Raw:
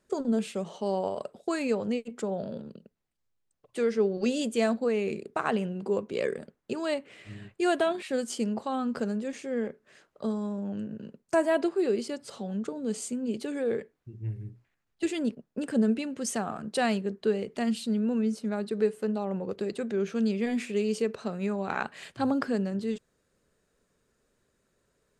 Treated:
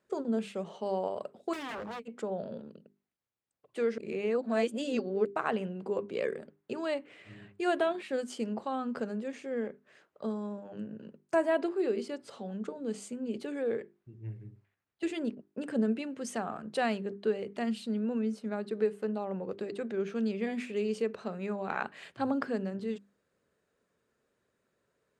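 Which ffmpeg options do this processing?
-filter_complex "[0:a]asettb=1/sr,asplit=3[a][b][c];[a]atrim=end=1.534[d];[b]atrim=start=1.53:end=2.03,asetpts=PTS-STARTPTS,afade=t=in:d=0.004:c=qsin,afade=t=out:st=0.496:d=0.004:c=qsin,aeval=exprs='0.0282*(abs(mod(val(0)/0.0282+3,4)-2)-1)':c=same[e];[c]atrim=start=2.026[f];[d][e]acrossfade=d=0.004:c1=hsin:c2=qsin[g];[g][f]acrossfade=d=0.004:c1=qsin:c2=hsin,asplit=3[h][i][j];[h]atrim=end=3.982[k];[i]atrim=start=3.978:end=5.252,asetpts=PTS-STARTPTS,areverse[l];[j]atrim=start=5.248[m];[k][l]acrossfade=d=0.004:c1=hsin:c2=hsin[n];[n][m]acrossfade=d=0.004:c1=hsin:c2=hsin,highpass=75,bass=f=250:g=-3,treble=f=4k:g=-8,bandreject=f=50:t=h:w=6,bandreject=f=100:t=h:w=6,bandreject=f=150:t=h:w=6,bandreject=f=200:t=h:w=6,bandreject=f=250:t=h:w=6,bandreject=f=300:t=h:w=6,bandreject=f=350:t=h:w=6,bandreject=f=400:t=h:w=6,volume=-2.5dB"

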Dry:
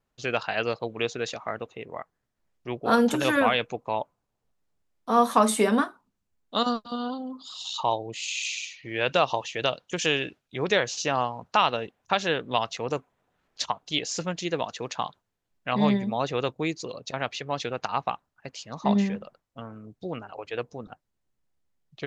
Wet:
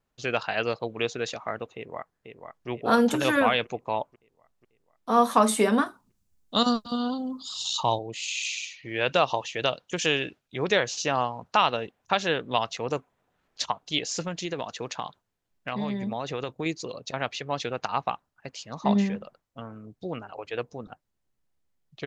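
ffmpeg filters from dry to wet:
-filter_complex "[0:a]asplit=2[a][b];[b]afade=t=in:st=1.75:d=0.01,afade=t=out:st=2.68:d=0.01,aecho=0:1:490|980|1470|1960|2450|2940|3430:0.446684|0.245676|0.135122|0.074317|0.0408743|0.0224809|0.0123645[c];[a][c]amix=inputs=2:normalize=0,asettb=1/sr,asplit=3[d][e][f];[d]atrim=end=5.864[g];[e]atrim=start=5.86:end=7.99,asetpts=PTS-STARTPTS,afade=t=in:d=0.004:c=qsin,afade=t=out:st=2.126:d=0.004:c=qsin,bass=f=250:g=8,treble=f=4k:g=9[h];[f]atrim=start=7.986[i];[g][h]acrossfade=d=0.004:c1=hsin:c2=qsin[j];[j][i]acrossfade=d=0.004:c1=qsin:c2=hsin,asettb=1/sr,asplit=3[k][l][m];[k]atrim=end=14.234[n];[l]atrim=start=14.23:end=16.66,asetpts=PTS-STARTPTS,afade=t=in:d=0.004:c=qsin,afade=t=out:st=2.426:d=0.004:c=qsin,acompressor=threshold=-26dB:ratio=6:attack=3.2:release=140:knee=1:detection=peak[o];[m]atrim=start=16.656[p];[n][o]acrossfade=d=0.004:c1=hsin:c2=qsin[q];[q][p]acrossfade=d=0.004:c1=qsin:c2=hsin"

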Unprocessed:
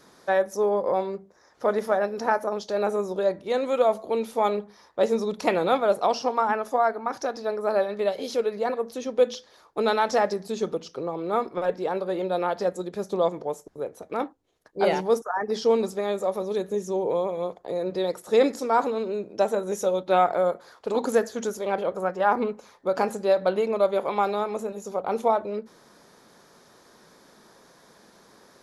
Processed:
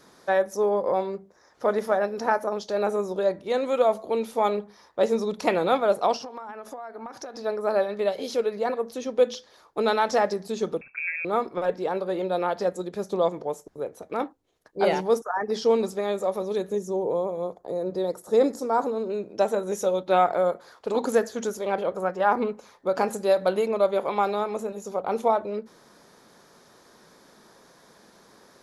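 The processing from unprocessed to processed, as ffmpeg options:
-filter_complex "[0:a]asettb=1/sr,asplit=3[a][b][c];[a]atrim=end=6.164[d];[b]atrim=start=6.16:end=7.39,asetpts=PTS-STARTPTS,afade=t=in:d=0.004:c=qsin,afade=t=out:st=1.226:d=0.004:c=qsin,acompressor=threshold=-33dB:ratio=20:attack=3.2:release=140:knee=1:detection=peak[e];[c]atrim=start=7.386[f];[d][e]acrossfade=d=0.004:c1=hsin:c2=qsin[g];[g][f]acrossfade=d=0.004:c1=qsin:c2=hsin,asettb=1/sr,asplit=3[h][i][j];[h]atrim=end=10.814[k];[i]atrim=start=10.81:end=11.25,asetpts=PTS-STARTPTS,afade=t=in:d=0.004:c=qsin,afade=t=out:st=0.436:d=0.004:c=qsin,lowpass=f=2.4k:t=q:w=0.5098,lowpass=f=2.4k:t=q:w=0.6013,lowpass=f=2.4k:t=q:w=0.9,lowpass=f=2.4k:t=q:w=2.563,afreqshift=-2800[l];[j]atrim=start=11.246[m];[k][l]acrossfade=d=0.004:c1=hsin:c2=qsin[n];[n][m]acrossfade=d=0.004:c1=qsin:c2=hsin,asettb=1/sr,asplit=3[o][p][q];[o]atrim=end=16.784[r];[p]atrim=start=16.78:end=19.1,asetpts=PTS-STARTPTS,afade=t=in:d=0.004:c=qsin,afade=t=out:st=2.316:d=0.004:c=qsin,equalizer=f=2.6k:t=o:w=1.5:g=-11.5[s];[q]atrim=start=19.096[t];[r][s]acrossfade=d=0.004:c1=hsin:c2=qsin[u];[u][t]acrossfade=d=0.004:c1=qsin:c2=hsin,asettb=1/sr,asplit=3[v][w][x];[v]atrim=end=23.134[y];[w]atrim=start=23.13:end=23.67,asetpts=PTS-STARTPTS,afade=t=in:d=0.004:c=qsin,afade=t=out:st=0.536:d=0.004:c=qsin,equalizer=f=11k:w=0.73:g=9.5[z];[x]atrim=start=23.666[aa];[y][z]acrossfade=d=0.004:c1=hsin:c2=qsin[ab];[ab][aa]acrossfade=d=0.004:c1=qsin:c2=hsin"

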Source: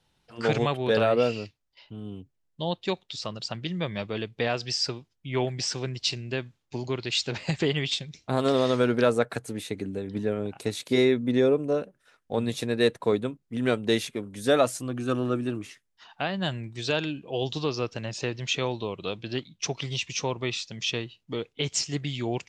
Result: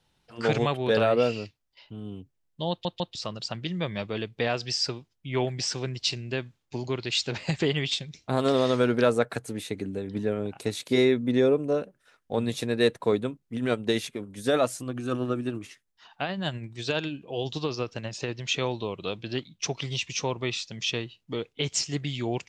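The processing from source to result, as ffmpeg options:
-filter_complex "[0:a]asettb=1/sr,asplit=3[a][b][c];[a]atrim=end=13.564[d];[b]atrim=start=13.56:end=18.47,asetpts=PTS-STARTPTS,afade=t=in:d=0.004:c=qsin,afade=t=out:st=4.906:d=0.004:c=qsin,tremolo=f=12:d=0.38[e];[c]atrim=start=18.466[f];[d][e]acrossfade=d=0.004:c1=hsin:c2=qsin[g];[g][f]acrossfade=d=0.004:c1=qsin:c2=hsin,asplit=4[h][i][j][k];[h]atrim=end=2.852[l];[i]atrim=start=2.698:end=2.852[m];[j]atrim=start=2.698:end=2.852[n];[k]atrim=start=3.148[o];[l][m]acrossfade=d=0.004:c1=hsin:c2=hsin[p];[p][n]acrossfade=d=0.004:c1=hsin:c2=hsin[q];[q][o]acrossfade=d=0.004:c1=hsin:c2=hsin"

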